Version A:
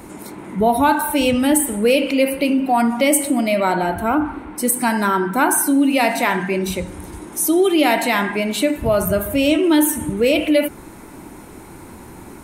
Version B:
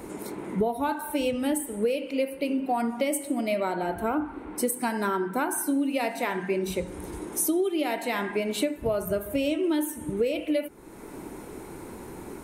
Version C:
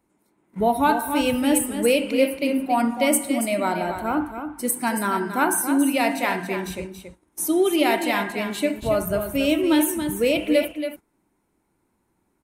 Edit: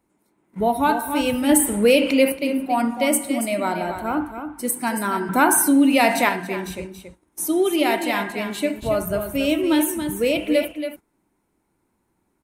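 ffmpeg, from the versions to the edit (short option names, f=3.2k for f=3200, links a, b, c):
-filter_complex "[0:a]asplit=2[a][b];[2:a]asplit=3[c][d][e];[c]atrim=end=1.492[f];[a]atrim=start=1.488:end=2.322[g];[d]atrim=start=2.318:end=5.292[h];[b]atrim=start=5.288:end=6.292[i];[e]atrim=start=6.288[j];[f][g]acrossfade=d=0.004:c1=hsin:c2=hsin[k];[k][h]acrossfade=d=0.004:c1=hsin:c2=hsin[l];[l][i]acrossfade=d=0.004:c1=hsin:c2=hsin[m];[m][j]acrossfade=d=0.004:c1=hsin:c2=hsin"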